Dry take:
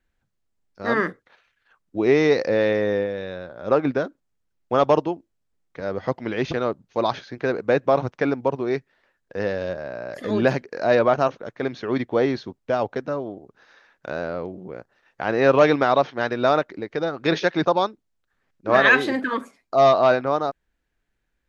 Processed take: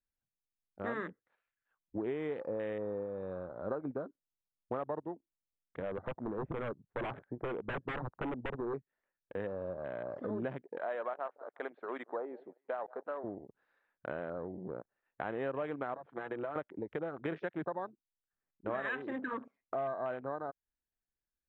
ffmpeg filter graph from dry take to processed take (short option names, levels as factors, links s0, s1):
-filter_complex "[0:a]asettb=1/sr,asplit=3[s0][s1][s2];[s0]atrim=end=5.824[s3];[s1]atrim=start=5.82:end=8.74,asetpts=PTS-STARTPTS,afade=t=in:d=0.004:c=qsin,afade=t=out:st=2.916:d=0.004:c=qsin,lowpass=f=1500:w=0.5412,lowpass=f=1500:w=1.3066,aeval=exprs='0.0841*(abs(mod(val(0)/0.0841+3,4)-2)-1)':c=same[s4];[s2]atrim=start=8.736[s5];[s3][s4]acrossfade=d=0.004:c1=hsin:c2=qsin[s6];[s6][s5]acrossfade=d=0.004:c1=qsin:c2=hsin,asettb=1/sr,asplit=3[s7][s8][s9];[s7]atrim=end=10.784[s10];[s8]atrim=start=10.78:end=13.24,asetpts=PTS-STARTPTS,afade=t=in:d=0.004:c=qsin,afade=t=out:st=2.456:d=0.004:c=qsin,highpass=640,lowpass=2100,aecho=1:1:176|352:0.0708|0.0212,atrim=end_sample=108486[s11];[s9]atrim=start=13.236[s12];[s10][s11]acrossfade=d=0.004:c1=hsin:c2=qsin[s13];[s13][s12]acrossfade=d=0.004:c1=qsin:c2=hsin,asettb=1/sr,asplit=3[s14][s15][s16];[s14]atrim=end=15.944[s17];[s15]atrim=start=15.94:end=16.56,asetpts=PTS-STARTPTS,afade=t=in:d=0.004:c=qsin,afade=t=out:st=0.616:d=0.004:c=qsin,acompressor=threshold=0.0501:ratio=8:attack=3.2:release=140:knee=1:detection=peak,highpass=140,lowpass=2800,aecho=1:1:6:0.53,atrim=end_sample=27342[s18];[s16]atrim=start=16.556[s19];[s17][s18]acrossfade=d=0.004:c1=hsin:c2=qsin[s20];[s20][s19]acrossfade=d=0.004:c1=qsin:c2=hsin,lowpass=2300,acompressor=threshold=0.0316:ratio=6,afwtdn=0.00891,volume=0.562"